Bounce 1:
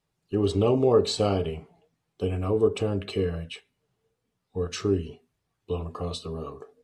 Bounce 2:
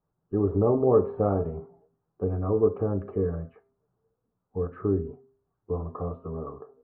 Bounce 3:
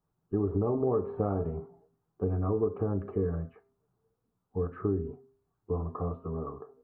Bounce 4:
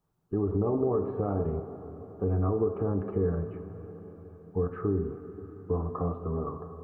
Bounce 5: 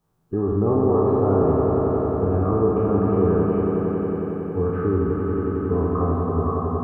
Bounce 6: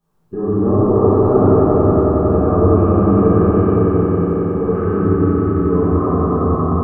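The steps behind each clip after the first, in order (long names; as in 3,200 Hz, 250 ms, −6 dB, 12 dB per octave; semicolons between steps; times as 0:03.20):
Butterworth low-pass 1,400 Hz 36 dB per octave; hum removal 133.2 Hz, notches 10
parametric band 550 Hz −5 dB 0.43 octaves; downward compressor, threshold −24 dBFS, peak gain reduction 8 dB
brickwall limiter −21.5 dBFS, peak gain reduction 6.5 dB; on a send at −9 dB: convolution reverb RT60 5.0 s, pre-delay 23 ms; on the sum: level +3 dB
peak hold with a decay on every bin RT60 1.53 s; on a send: echo that builds up and dies away 91 ms, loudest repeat 5, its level −7.5 dB; on the sum: level +4 dB
rectangular room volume 220 cubic metres, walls hard, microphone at 1.3 metres; level −2.5 dB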